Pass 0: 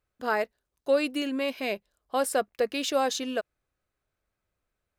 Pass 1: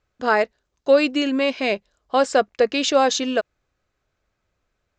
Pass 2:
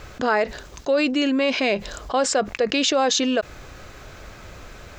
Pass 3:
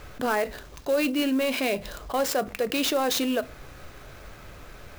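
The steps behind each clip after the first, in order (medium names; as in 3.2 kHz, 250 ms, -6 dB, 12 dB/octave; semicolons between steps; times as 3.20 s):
steep low-pass 7.5 kHz 72 dB/octave; trim +8.5 dB
level flattener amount 70%; trim -6.5 dB
saturation -11 dBFS, distortion -23 dB; reverberation RT60 0.35 s, pre-delay 7 ms, DRR 13.5 dB; sampling jitter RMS 0.023 ms; trim -4 dB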